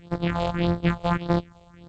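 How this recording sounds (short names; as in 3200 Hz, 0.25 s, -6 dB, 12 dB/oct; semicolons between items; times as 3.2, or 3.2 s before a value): a buzz of ramps at a fixed pitch in blocks of 256 samples; phasing stages 4, 1.7 Hz, lowest notch 260–2600 Hz; G.722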